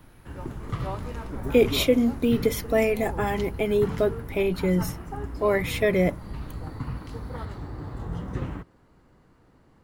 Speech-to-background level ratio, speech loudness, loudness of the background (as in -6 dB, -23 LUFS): 11.0 dB, -24.5 LUFS, -35.5 LUFS